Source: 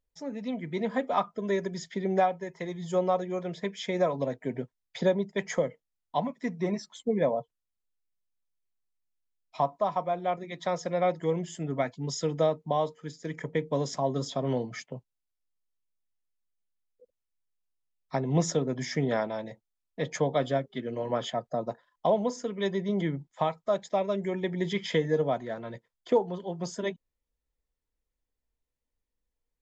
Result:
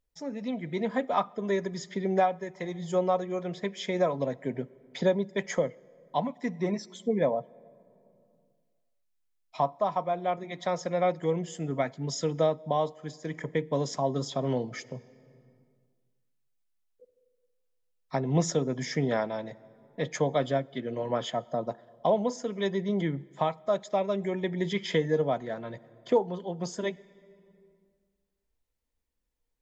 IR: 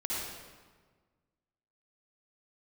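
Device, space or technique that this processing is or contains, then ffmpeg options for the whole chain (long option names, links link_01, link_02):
ducked reverb: -filter_complex "[0:a]asplit=3[link_01][link_02][link_03];[1:a]atrim=start_sample=2205[link_04];[link_02][link_04]afir=irnorm=-1:irlink=0[link_05];[link_03]apad=whole_len=1306111[link_06];[link_05][link_06]sidechaincompress=threshold=-41dB:ratio=16:attack=5.7:release=758,volume=-10.5dB[link_07];[link_01][link_07]amix=inputs=2:normalize=0"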